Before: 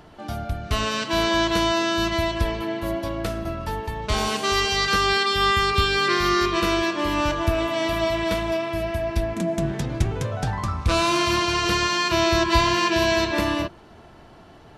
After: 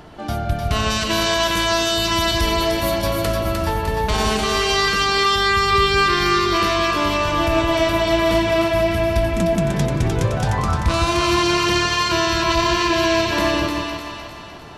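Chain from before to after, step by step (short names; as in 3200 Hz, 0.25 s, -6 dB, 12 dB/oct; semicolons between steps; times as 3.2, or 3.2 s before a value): 0.9–3.26 high shelf 5000 Hz +11 dB; limiter -16.5 dBFS, peak gain reduction 12 dB; split-band echo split 750 Hz, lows 0.157 s, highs 0.303 s, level -4 dB; gain +6 dB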